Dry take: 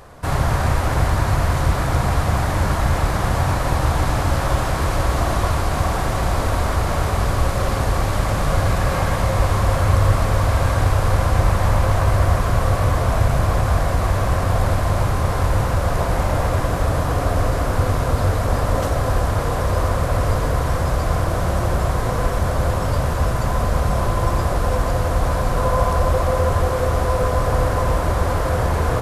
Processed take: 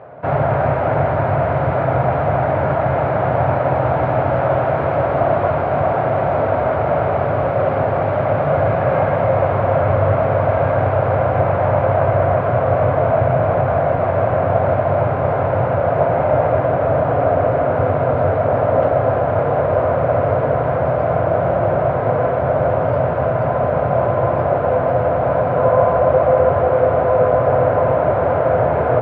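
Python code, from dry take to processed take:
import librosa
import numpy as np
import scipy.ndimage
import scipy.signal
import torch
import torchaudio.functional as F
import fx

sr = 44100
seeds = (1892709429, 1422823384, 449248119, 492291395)

y = fx.cabinet(x, sr, low_hz=120.0, low_slope=24, high_hz=2000.0, hz=(200.0, 320.0, 630.0, 1100.0, 1800.0), db=(-9, -5, 8, -8, -7))
y = F.gain(torch.from_numpy(y), 6.0).numpy()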